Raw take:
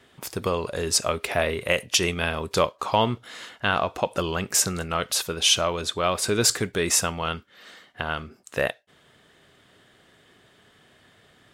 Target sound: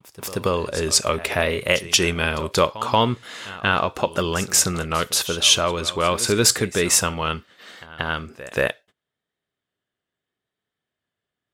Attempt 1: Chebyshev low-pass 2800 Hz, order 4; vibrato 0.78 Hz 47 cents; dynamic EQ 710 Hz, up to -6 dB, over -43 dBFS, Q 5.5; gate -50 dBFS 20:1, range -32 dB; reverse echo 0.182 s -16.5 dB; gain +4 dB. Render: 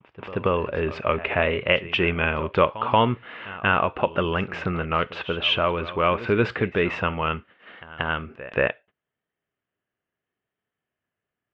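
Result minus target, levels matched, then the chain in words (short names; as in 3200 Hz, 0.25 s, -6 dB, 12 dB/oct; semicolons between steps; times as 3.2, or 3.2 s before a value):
2000 Hz band +3.0 dB
vibrato 0.78 Hz 47 cents; dynamic EQ 710 Hz, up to -6 dB, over -43 dBFS, Q 5.5; gate -50 dBFS 20:1, range -32 dB; reverse echo 0.182 s -16.5 dB; gain +4 dB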